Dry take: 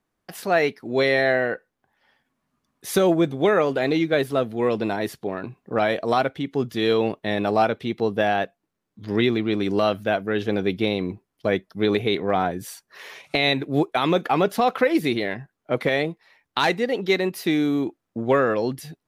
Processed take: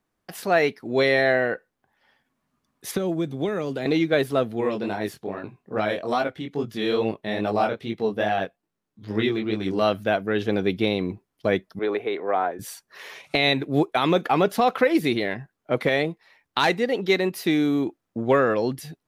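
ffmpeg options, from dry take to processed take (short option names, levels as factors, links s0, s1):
-filter_complex "[0:a]asettb=1/sr,asplit=3[s0][s1][s2];[s0]atrim=end=2.914[s3];[s1]atrim=start=2.91:end=3.86,asetpts=PTS-STARTPTS,afade=t=in:d=0.004:c=qsin,afade=t=out:st=0.946:d=0.004:c=qsin,acrossover=split=330|3400[s4][s5][s6];[s4]acompressor=threshold=0.0562:ratio=4[s7];[s5]acompressor=threshold=0.0251:ratio=4[s8];[s6]acompressor=threshold=0.00562:ratio=4[s9];[s7][s8][s9]amix=inputs=3:normalize=0[s10];[s2]atrim=start=3.856[s11];[s3][s10]acrossfade=d=0.004:c1=hsin:c2=qsin[s12];[s12][s11]acrossfade=d=0.004:c1=qsin:c2=hsin,asplit=3[s13][s14][s15];[s13]afade=t=out:st=4.6:d=0.02[s16];[s14]flanger=delay=18:depth=5.8:speed=2.4,afade=t=in:st=4.6:d=0.02,afade=t=out:st=9.8:d=0.02[s17];[s15]afade=t=in:st=9.8:d=0.02[s18];[s16][s17][s18]amix=inputs=3:normalize=0,asettb=1/sr,asplit=3[s19][s20][s21];[s19]atrim=end=11.794[s22];[s20]atrim=start=11.79:end=12.59,asetpts=PTS-STARTPTS,afade=t=in:d=0.004:c=qsin,afade=t=out:st=0.796:d=0.004:c=qsin,acrossover=split=340 2200:gain=0.0794 1 0.158[s23][s24][s25];[s23][s24][s25]amix=inputs=3:normalize=0[s26];[s21]atrim=start=12.586[s27];[s22][s26]acrossfade=d=0.004:c1=hsin:c2=qsin[s28];[s28][s27]acrossfade=d=0.004:c1=qsin:c2=hsin"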